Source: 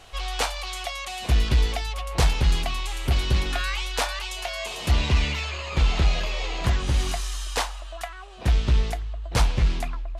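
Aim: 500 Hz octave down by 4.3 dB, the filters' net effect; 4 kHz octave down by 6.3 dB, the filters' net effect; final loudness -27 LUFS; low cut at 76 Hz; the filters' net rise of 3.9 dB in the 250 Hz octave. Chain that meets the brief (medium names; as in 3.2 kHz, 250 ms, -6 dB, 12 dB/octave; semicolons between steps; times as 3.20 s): high-pass 76 Hz; peaking EQ 250 Hz +7.5 dB; peaking EQ 500 Hz -8 dB; peaking EQ 4 kHz -8.5 dB; trim +2.5 dB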